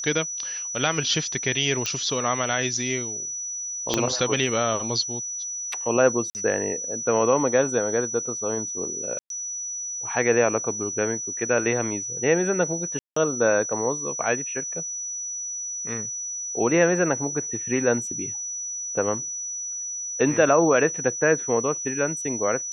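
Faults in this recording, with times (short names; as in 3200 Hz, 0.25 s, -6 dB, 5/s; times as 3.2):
tone 5900 Hz -29 dBFS
1.86 pop -12 dBFS
3.94 pop -7 dBFS
6.3–6.35 gap 49 ms
9.19–9.3 gap 0.112 s
12.99–13.16 gap 0.174 s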